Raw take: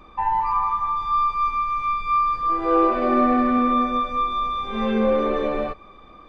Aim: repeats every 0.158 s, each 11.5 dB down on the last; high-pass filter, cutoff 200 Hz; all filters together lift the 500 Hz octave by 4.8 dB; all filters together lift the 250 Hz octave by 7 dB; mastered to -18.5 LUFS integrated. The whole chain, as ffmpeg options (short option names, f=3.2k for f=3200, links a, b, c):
-af "highpass=200,equalizer=f=250:t=o:g=8.5,equalizer=f=500:t=o:g=3.5,aecho=1:1:158|316|474:0.266|0.0718|0.0194,volume=-1dB"